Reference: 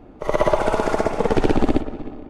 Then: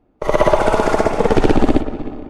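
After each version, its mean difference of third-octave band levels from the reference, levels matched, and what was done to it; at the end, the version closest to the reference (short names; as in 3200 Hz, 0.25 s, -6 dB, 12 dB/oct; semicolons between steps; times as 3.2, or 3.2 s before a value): 1.0 dB: in parallel at -6.5 dB: soft clip -14.5 dBFS, distortion -10 dB; on the sum: gate with hold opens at -28 dBFS; gain +2.5 dB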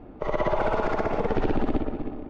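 4.0 dB: limiter -14 dBFS, peak gain reduction 9 dB; air absorption 200 m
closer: first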